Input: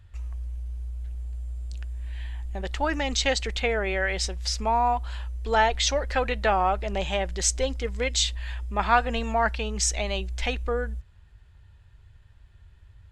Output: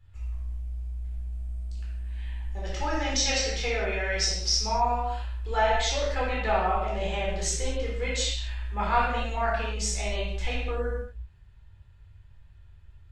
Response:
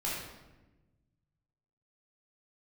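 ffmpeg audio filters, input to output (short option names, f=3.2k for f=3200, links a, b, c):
-filter_complex "[0:a]asettb=1/sr,asplit=3[a][b][c];[a]atrim=end=2.514[d];[b]atrim=start=2.51:end=4.99,asetpts=PTS-STARTPTS,afade=t=in:d=0.004:c=qsin,afade=t=out:st=2.476:d=0.004:c=qsin,equalizer=f=5.6k:t=o:w=0.34:g=14[e];[c]atrim=start=4.986[f];[d][e]acrossfade=d=0.004:c1=hsin:c2=qsin[g];[g][f]acrossfade=d=0.004:c1=qsin:c2=hsin[h];[1:a]atrim=start_sample=2205,afade=t=out:st=0.32:d=0.01,atrim=end_sample=14553[i];[h][i]afir=irnorm=-1:irlink=0,volume=-7.5dB"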